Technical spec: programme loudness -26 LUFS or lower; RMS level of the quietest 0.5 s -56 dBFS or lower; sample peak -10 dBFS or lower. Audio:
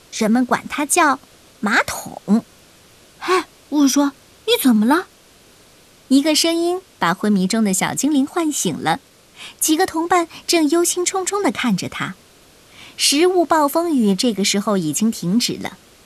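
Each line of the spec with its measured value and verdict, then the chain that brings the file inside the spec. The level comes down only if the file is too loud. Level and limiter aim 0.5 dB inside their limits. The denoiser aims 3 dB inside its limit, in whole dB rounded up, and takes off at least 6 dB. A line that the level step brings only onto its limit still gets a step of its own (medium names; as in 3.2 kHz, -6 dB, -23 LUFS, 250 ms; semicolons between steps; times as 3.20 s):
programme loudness -18.0 LUFS: fail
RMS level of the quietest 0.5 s -49 dBFS: fail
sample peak -4.0 dBFS: fail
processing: trim -8.5 dB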